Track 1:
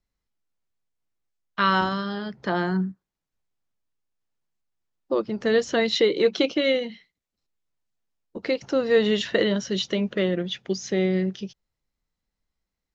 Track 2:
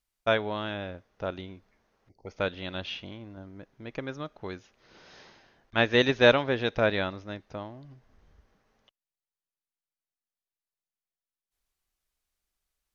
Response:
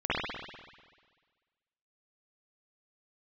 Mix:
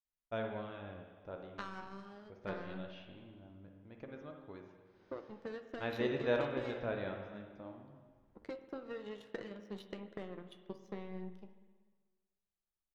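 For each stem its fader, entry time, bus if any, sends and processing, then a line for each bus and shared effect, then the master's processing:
-3.0 dB, 0.00 s, send -21.5 dB, compressor 5:1, threshold -24 dBFS, peak gain reduction 9.5 dB; power-law curve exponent 2
-10.0 dB, 0.05 s, send -14.5 dB, dry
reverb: on, RT60 1.5 s, pre-delay 49 ms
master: high shelf 2100 Hz -11.5 dB; flange 0.22 Hz, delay 7.1 ms, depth 9.6 ms, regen +65%

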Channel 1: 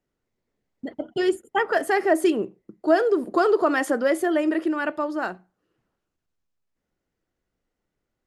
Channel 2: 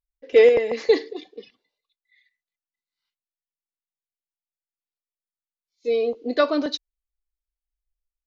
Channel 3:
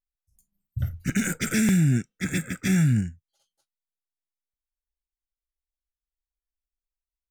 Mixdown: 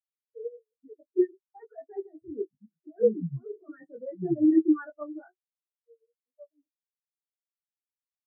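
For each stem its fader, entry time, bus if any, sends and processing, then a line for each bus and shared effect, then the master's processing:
+2.5 dB, 0.00 s, no send, tilt shelf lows -3 dB, about 1300 Hz; negative-ratio compressor -25 dBFS, ratio -1
-12.0 dB, 0.00 s, no send, dry
-6.5 dB, 1.45 s, no send, dry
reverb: off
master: chorus 1.1 Hz, delay 18.5 ms, depth 5.1 ms; spectral expander 4:1

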